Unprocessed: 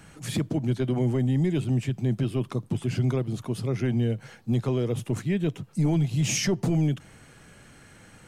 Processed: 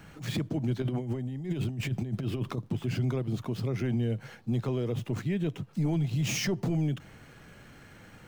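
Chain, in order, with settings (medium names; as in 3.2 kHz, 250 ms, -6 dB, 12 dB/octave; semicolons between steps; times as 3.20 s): median filter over 5 samples; 0.82–2.58 s: compressor with a negative ratio -29 dBFS, ratio -0.5; peak limiter -22.5 dBFS, peak gain reduction 6 dB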